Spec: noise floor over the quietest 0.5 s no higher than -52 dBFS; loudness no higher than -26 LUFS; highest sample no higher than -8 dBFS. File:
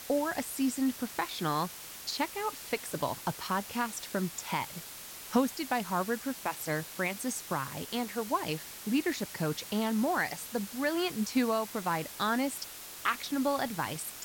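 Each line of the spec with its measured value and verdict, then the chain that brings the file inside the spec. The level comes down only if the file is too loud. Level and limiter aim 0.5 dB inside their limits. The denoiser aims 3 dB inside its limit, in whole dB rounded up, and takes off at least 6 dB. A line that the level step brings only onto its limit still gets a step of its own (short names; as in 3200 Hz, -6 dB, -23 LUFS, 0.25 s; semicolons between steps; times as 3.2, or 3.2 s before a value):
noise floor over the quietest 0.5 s -46 dBFS: fail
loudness -33.0 LUFS: OK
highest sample -14.0 dBFS: OK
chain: denoiser 9 dB, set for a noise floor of -46 dBFS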